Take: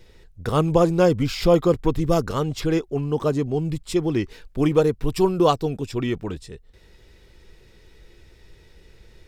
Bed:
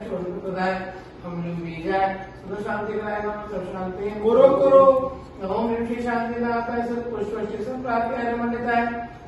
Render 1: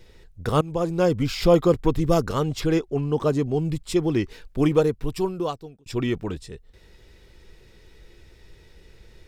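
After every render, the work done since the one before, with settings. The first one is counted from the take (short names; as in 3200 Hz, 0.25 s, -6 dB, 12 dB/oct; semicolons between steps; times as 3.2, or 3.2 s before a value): 0.61–1.61 fade in equal-power, from -16 dB; 2.78–3.29 high shelf 9900 Hz -5.5 dB; 4.63–5.86 fade out linear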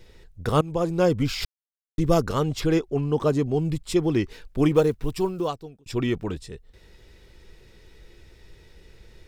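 1.45–1.98 mute; 4.76–5.5 block floating point 7-bit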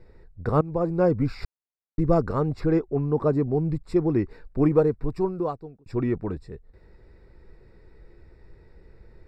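running mean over 14 samples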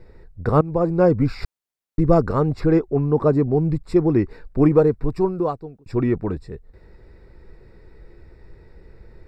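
gain +5 dB; limiter -3 dBFS, peak gain reduction 1 dB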